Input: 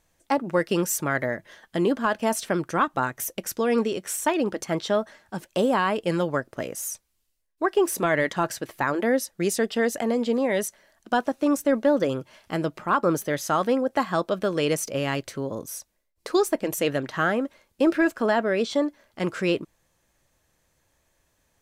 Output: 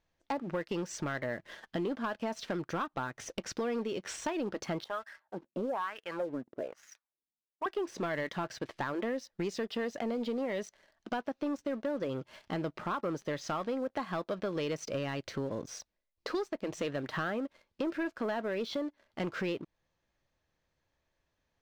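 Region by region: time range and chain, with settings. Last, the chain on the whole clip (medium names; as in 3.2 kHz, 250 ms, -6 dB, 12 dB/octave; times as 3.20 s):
4.84–7.66 s: treble shelf 2.9 kHz +8.5 dB + wah-wah 1.1 Hz 230–1800 Hz, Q 2.9
whole clip: low-pass 5.3 kHz 24 dB/octave; compression 5:1, threshold -32 dBFS; waveshaping leveller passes 2; trim -6.5 dB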